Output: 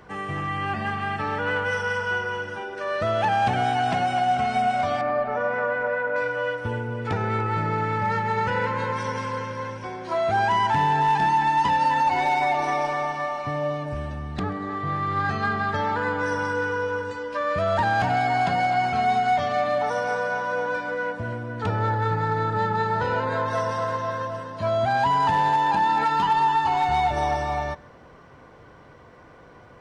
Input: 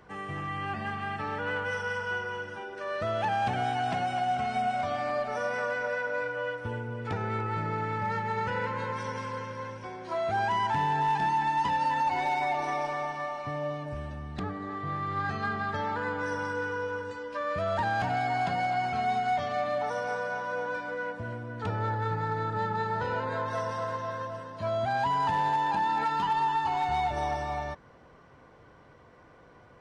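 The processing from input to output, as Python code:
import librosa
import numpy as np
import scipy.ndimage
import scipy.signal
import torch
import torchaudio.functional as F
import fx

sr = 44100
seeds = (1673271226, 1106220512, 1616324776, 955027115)

y = fx.lowpass(x, sr, hz=1900.0, slope=12, at=(5.01, 6.16))
y = y + 10.0 ** (-23.5 / 20.0) * np.pad(y, (int(134 * sr / 1000.0), 0))[:len(y)]
y = F.gain(torch.from_numpy(y), 6.5).numpy()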